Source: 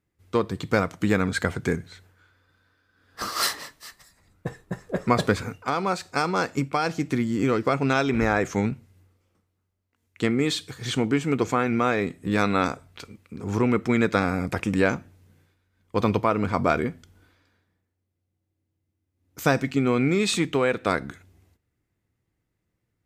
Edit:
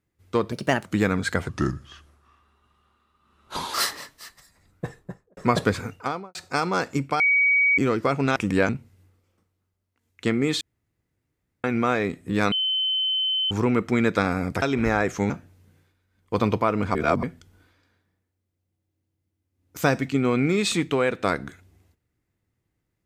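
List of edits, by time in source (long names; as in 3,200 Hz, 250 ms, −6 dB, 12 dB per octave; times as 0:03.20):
0:00.52–0:00.95: play speed 128%
0:01.58–0:03.36: play speed 79%
0:04.49–0:04.99: fade out and dull
0:05.63–0:05.97: fade out and dull
0:06.82–0:07.40: beep over 2,260 Hz −16 dBFS
0:07.98–0:08.66: swap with 0:14.59–0:14.92
0:10.58–0:11.61: fill with room tone
0:12.49–0:13.48: beep over 3,060 Hz −21 dBFS
0:16.57–0:16.85: reverse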